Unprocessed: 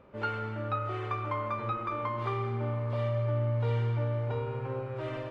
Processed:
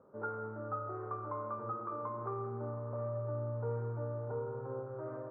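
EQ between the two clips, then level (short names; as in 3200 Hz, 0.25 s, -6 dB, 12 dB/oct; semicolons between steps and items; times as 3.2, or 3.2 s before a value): HPF 120 Hz; elliptic low-pass 1400 Hz, stop band 70 dB; bell 450 Hz +4.5 dB 0.34 oct; -6.0 dB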